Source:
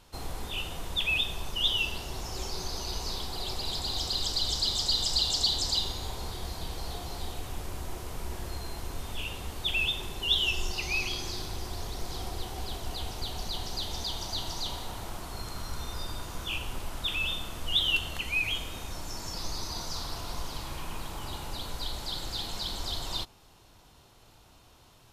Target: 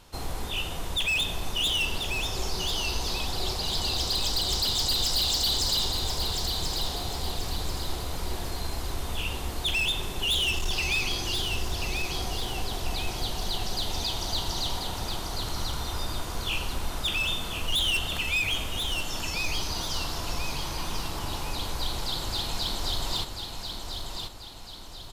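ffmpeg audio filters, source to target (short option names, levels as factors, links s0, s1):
-af "volume=22.4,asoftclip=hard,volume=0.0447,aecho=1:1:1038|2076|3114|4152|5190:0.501|0.216|0.0927|0.0398|0.0171,volume=1.58"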